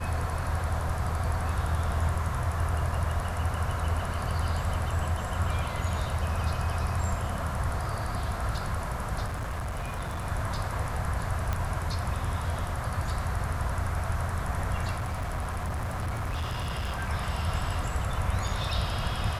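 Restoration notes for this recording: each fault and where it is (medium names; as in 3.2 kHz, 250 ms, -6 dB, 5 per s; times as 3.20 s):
9.26–10.26 s: clipped -29.5 dBFS
11.53 s: pop -16 dBFS
14.91–17.10 s: clipped -27.5 dBFS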